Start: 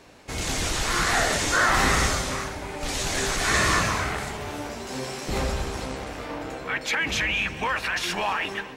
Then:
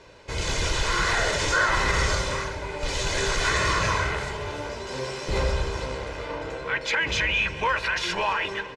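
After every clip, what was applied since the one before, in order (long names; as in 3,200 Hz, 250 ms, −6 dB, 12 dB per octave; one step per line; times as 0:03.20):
brickwall limiter −14.5 dBFS, peak gain reduction 6 dB
low-pass filter 6,100 Hz 12 dB per octave
comb filter 2 ms, depth 57%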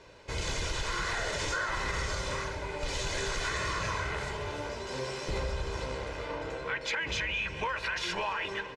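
downward compressor, threshold −25 dBFS, peak gain reduction 7.5 dB
level −4 dB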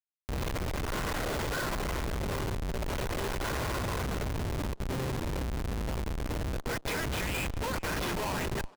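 comparator with hysteresis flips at −31.5 dBFS
far-end echo of a speakerphone 380 ms, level −18 dB
upward compression, threshold −39 dBFS
level +2 dB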